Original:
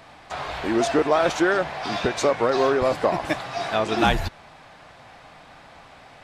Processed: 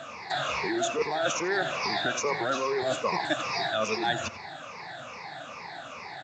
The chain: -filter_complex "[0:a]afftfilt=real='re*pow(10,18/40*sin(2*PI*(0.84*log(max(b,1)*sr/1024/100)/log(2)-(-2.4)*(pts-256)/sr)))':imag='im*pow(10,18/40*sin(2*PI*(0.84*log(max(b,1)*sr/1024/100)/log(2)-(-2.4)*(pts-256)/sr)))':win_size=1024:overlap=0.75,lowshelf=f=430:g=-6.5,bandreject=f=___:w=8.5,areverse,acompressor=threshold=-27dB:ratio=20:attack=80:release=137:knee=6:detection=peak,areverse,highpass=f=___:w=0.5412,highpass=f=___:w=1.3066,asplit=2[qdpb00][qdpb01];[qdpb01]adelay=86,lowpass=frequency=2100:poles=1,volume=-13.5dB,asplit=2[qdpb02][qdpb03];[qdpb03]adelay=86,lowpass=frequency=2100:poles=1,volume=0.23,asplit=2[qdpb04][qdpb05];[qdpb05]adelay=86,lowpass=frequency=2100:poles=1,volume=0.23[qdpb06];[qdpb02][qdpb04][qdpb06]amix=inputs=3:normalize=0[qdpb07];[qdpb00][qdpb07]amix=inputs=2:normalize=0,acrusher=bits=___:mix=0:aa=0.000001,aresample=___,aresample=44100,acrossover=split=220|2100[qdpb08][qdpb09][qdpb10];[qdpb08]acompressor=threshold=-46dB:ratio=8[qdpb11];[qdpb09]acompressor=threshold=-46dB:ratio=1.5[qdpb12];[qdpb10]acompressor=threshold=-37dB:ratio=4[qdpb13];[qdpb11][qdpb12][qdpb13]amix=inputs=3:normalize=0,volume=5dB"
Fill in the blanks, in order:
3100, 98, 98, 10, 16000